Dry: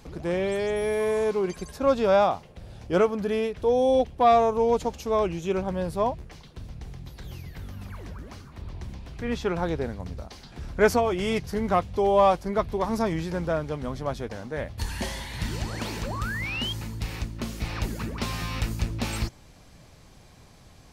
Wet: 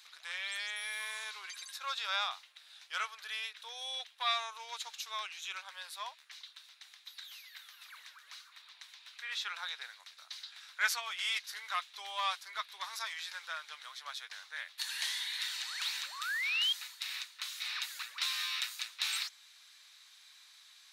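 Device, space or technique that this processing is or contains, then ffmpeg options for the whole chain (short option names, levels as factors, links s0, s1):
headphones lying on a table: -af "highpass=f=1400:w=0.5412,highpass=f=1400:w=1.3066,equalizer=f=3800:t=o:w=0.29:g=11,volume=0.841"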